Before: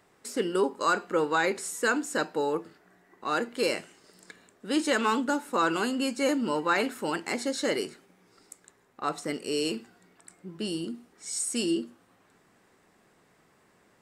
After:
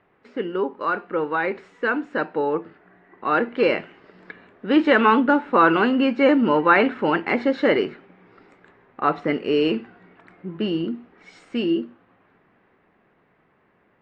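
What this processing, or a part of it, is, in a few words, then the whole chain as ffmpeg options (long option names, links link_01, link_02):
action camera in a waterproof case: -af "lowpass=frequency=2700:width=0.5412,lowpass=frequency=2700:width=1.3066,dynaudnorm=framelen=270:gausssize=21:maxgain=9dB,volume=1.5dB" -ar 32000 -c:a aac -b:a 64k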